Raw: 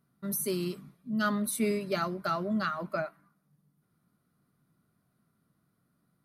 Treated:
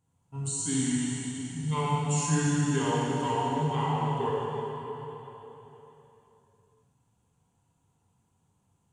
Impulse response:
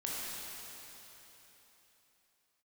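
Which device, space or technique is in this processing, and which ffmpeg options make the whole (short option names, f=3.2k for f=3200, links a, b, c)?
slowed and reverbed: -filter_complex "[0:a]asetrate=30870,aresample=44100[a];[1:a]atrim=start_sample=2205[b];[a][b]afir=irnorm=-1:irlink=0"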